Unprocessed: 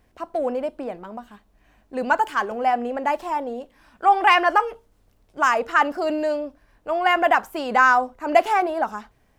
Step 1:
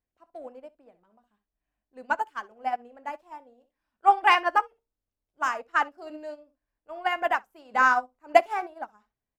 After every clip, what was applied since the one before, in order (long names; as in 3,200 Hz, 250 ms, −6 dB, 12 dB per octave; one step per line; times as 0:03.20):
on a send: ambience of single reflections 23 ms −15.5 dB, 63 ms −12.5 dB
on the sum: expander for the loud parts 2.5 to 1, over −30 dBFS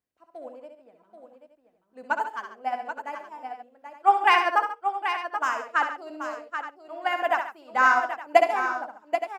high-pass filter 100 Hz 12 dB per octave
on a send: multi-tap delay 65/68/101/138/782/869 ms −7/−18.5/−19.5/−13.5/−8.5/−15 dB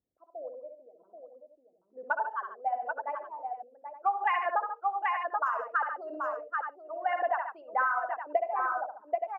spectral envelope exaggerated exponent 2
downward compressor 6 to 1, threshold −25 dBFS, peak gain reduction 14 dB
low-pass that shuts in the quiet parts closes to 770 Hz, open at −29 dBFS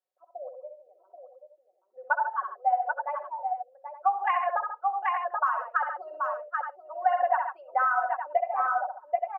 high-pass filter 600 Hz 24 dB per octave
high-shelf EQ 2,000 Hz −10.5 dB
comb filter 5.4 ms, depth 86%
level +4 dB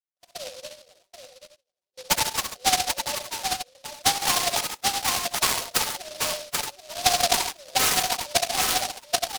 noise gate with hold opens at −49 dBFS
short delay modulated by noise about 4,100 Hz, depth 0.21 ms
level +2.5 dB